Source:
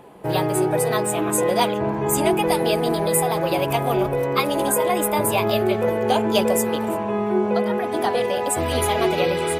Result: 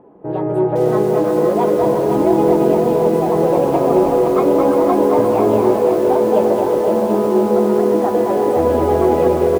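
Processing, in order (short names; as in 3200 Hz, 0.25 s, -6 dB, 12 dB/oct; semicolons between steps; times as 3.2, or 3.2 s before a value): EQ curve 140 Hz 0 dB, 290 Hz +8 dB, 1300 Hz -3 dB, 5100 Hz -29 dB; AGC gain up to 11.5 dB; on a send: bouncing-ball echo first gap 0.22 s, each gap 0.6×, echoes 5; on the sum: lo-fi delay 0.514 s, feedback 55%, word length 5-bit, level -5 dB; gain -4.5 dB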